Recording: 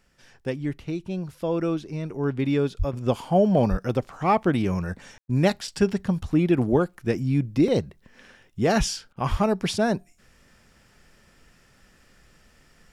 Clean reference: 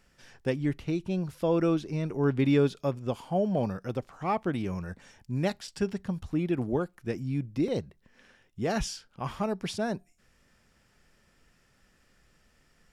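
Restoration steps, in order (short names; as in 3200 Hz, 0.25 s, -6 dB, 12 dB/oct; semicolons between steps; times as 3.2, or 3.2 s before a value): de-plosive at 2.78/3.7/9.3; room tone fill 5.18–5.28; interpolate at 5.26/9.13, 32 ms; gain 0 dB, from 2.93 s -8 dB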